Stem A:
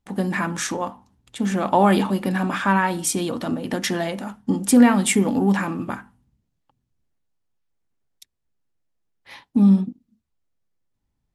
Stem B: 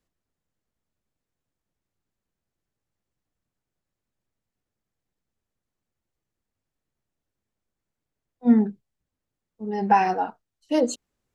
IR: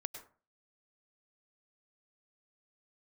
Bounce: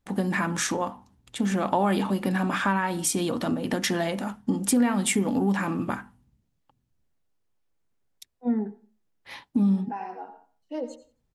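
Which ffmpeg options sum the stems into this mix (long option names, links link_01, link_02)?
-filter_complex "[0:a]volume=0.5dB,asplit=2[link_01][link_02];[1:a]highpass=220,highshelf=frequency=3300:gain=-12,volume=-3dB,asplit=3[link_03][link_04][link_05];[link_04]volume=-13.5dB[link_06];[link_05]volume=-22.5dB[link_07];[link_02]apad=whole_len=500210[link_08];[link_03][link_08]sidechaincompress=threshold=-35dB:ratio=8:attack=16:release=1270[link_09];[2:a]atrim=start_sample=2205[link_10];[link_06][link_10]afir=irnorm=-1:irlink=0[link_11];[link_07]aecho=0:1:88|176|264|352:1|0.25|0.0625|0.0156[link_12];[link_01][link_09][link_11][link_12]amix=inputs=4:normalize=0,acompressor=threshold=-23dB:ratio=2.5"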